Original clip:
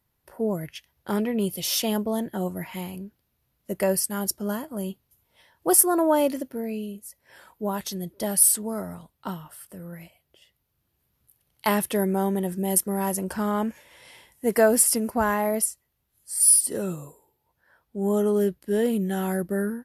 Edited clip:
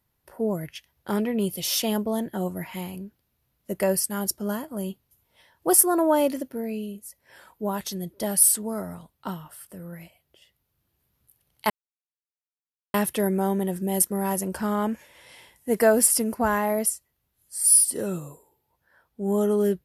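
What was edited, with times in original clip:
11.7 insert silence 1.24 s

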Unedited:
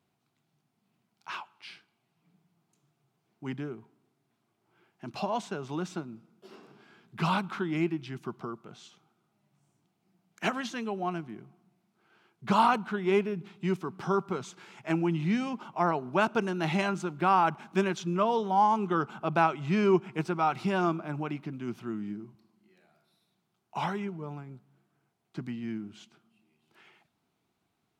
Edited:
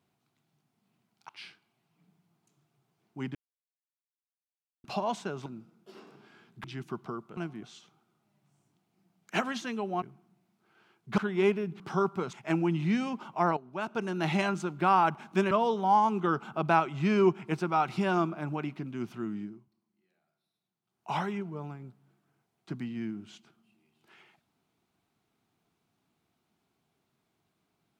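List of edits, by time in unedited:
1.29–1.55 cut
3.61–5.1 mute
5.72–6.02 cut
7.2–7.99 cut
11.11–11.37 move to 8.72
12.53–12.87 cut
13.49–13.93 cut
14.46–14.73 cut
15.97–16.58 fade in quadratic, from -13 dB
17.91–18.18 cut
22.04–23.77 dip -13 dB, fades 0.28 s

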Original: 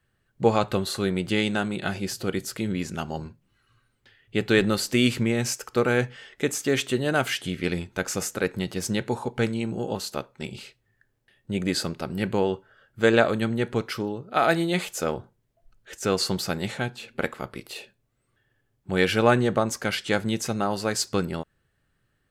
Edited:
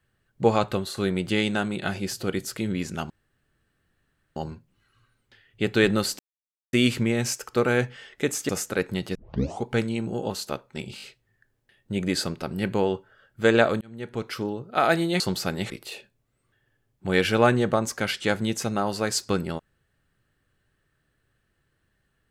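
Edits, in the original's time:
0.65–0.97 fade out, to -6 dB
3.1 insert room tone 1.26 s
4.93 insert silence 0.54 s
6.69–8.14 cut
8.8 tape start 0.49 s
10.61 stutter 0.02 s, 4 plays
13.4–14.04 fade in
14.79–16.23 cut
16.73–17.54 cut

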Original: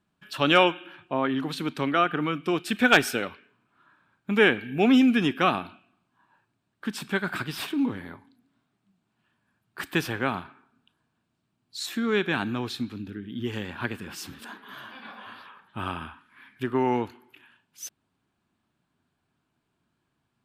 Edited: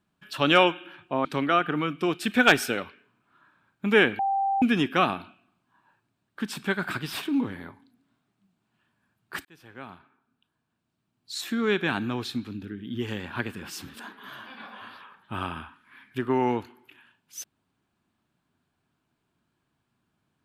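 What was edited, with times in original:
1.25–1.7 cut
4.64–5.07 bleep 785 Hz -22 dBFS
9.9–11.91 fade in

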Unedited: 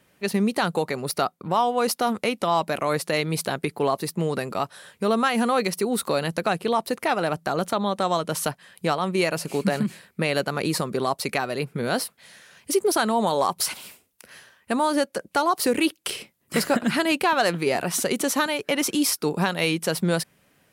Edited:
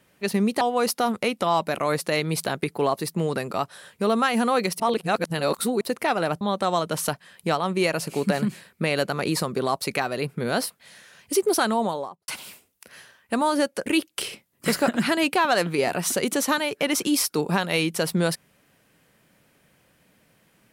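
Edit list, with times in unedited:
0.61–1.62 cut
5.81–6.82 reverse
7.42–7.79 cut
13.04–13.66 studio fade out
15.24–15.74 cut

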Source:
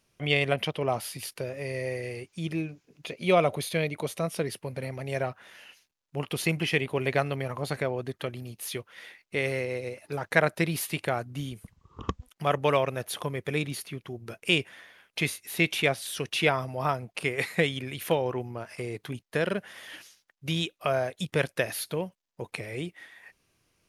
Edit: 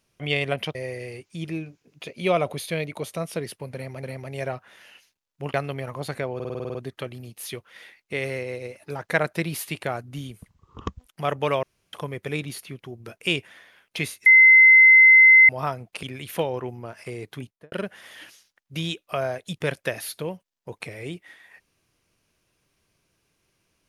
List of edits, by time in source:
0.75–1.78 cut
4.77–5.06 loop, 2 plays
6.28–7.16 cut
7.97 stutter 0.05 s, 9 plays
12.85–13.15 room tone
15.48–16.71 bleep 2060 Hz -8.5 dBFS
17.25–17.75 cut
19.12–19.44 studio fade out

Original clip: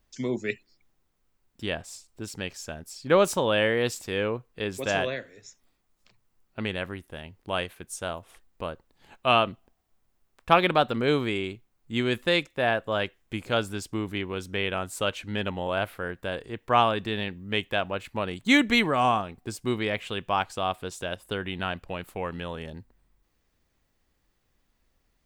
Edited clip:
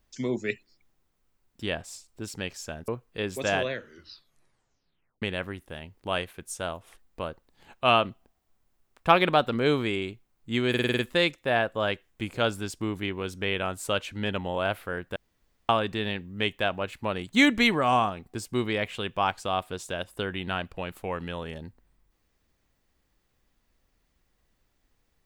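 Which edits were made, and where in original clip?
2.88–4.3 cut
5.12 tape stop 1.52 s
12.11 stutter 0.05 s, 7 plays
16.28–16.81 room tone

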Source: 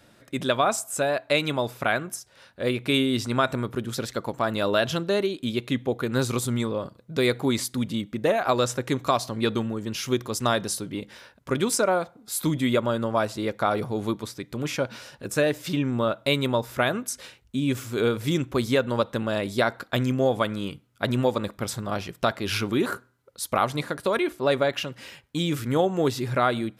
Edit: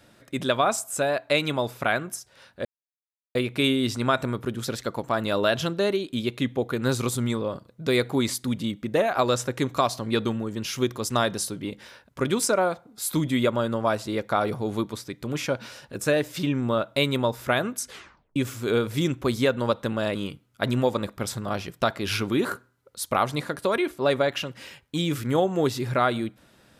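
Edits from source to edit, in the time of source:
2.65 insert silence 0.70 s
17.18 tape stop 0.48 s
19.45–20.56 cut

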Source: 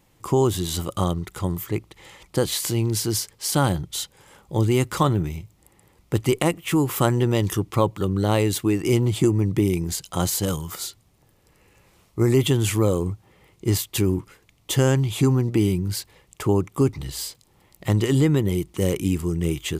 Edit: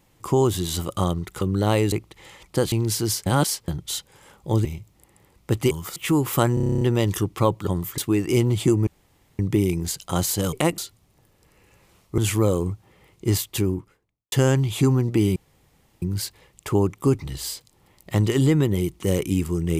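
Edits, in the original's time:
1.41–1.72 swap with 8.03–8.54
2.52–2.77 cut
3.31–3.73 reverse
4.7–5.28 cut
6.34–6.59 swap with 10.57–10.82
7.17 stutter 0.03 s, 10 plays
9.43 insert room tone 0.52 s
12.22–12.58 cut
13.8–14.72 studio fade out
15.76 insert room tone 0.66 s

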